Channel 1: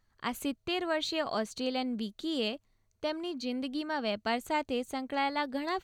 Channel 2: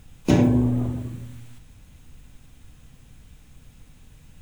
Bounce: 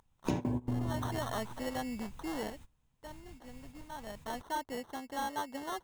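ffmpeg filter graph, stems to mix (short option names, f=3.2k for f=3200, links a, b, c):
-filter_complex "[0:a]acrusher=samples=18:mix=1:aa=0.000001,volume=4.5dB,afade=t=in:st=0.64:d=0.56:silence=0.266073,afade=t=out:st=2.26:d=0.66:silence=0.237137,afade=t=in:st=3.89:d=0.78:silence=0.334965,asplit=2[a][b];[1:a]volume=-4.5dB[c];[b]apad=whole_len=194516[d];[c][d]sidechaingate=range=-22dB:threshold=-55dB:ratio=16:detection=peak[e];[a][e]amix=inputs=2:normalize=0,equalizer=f=940:t=o:w=0.44:g=9,acompressor=threshold=-30dB:ratio=5"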